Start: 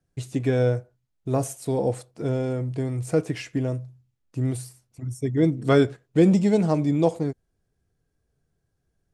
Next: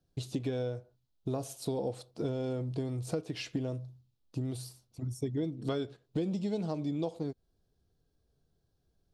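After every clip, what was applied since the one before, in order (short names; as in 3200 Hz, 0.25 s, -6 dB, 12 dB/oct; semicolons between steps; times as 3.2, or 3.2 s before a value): dynamic EQ 2500 Hz, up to +4 dB, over -45 dBFS, Q 0.95; compressor 12:1, threshold -29 dBFS, peak gain reduction 17 dB; ten-band EQ 125 Hz -3 dB, 2000 Hz -11 dB, 4000 Hz +8 dB, 8000 Hz -7 dB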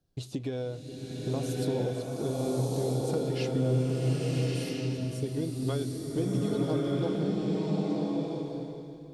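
bloom reverb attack 1.3 s, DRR -4.5 dB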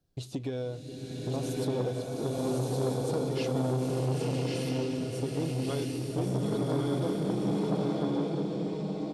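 echo 1.113 s -4 dB; core saturation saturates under 470 Hz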